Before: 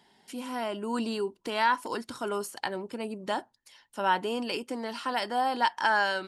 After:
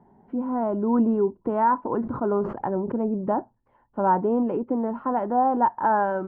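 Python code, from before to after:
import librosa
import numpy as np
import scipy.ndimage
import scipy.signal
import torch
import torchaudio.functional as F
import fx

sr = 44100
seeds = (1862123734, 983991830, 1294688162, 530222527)

y = scipy.signal.sosfilt(scipy.signal.butter(4, 1100.0, 'lowpass', fs=sr, output='sos'), x)
y = fx.low_shelf(y, sr, hz=240.0, db=11.5)
y = fx.sustainer(y, sr, db_per_s=81.0, at=(1.86, 3.28))
y = y * 10.0 ** (5.5 / 20.0)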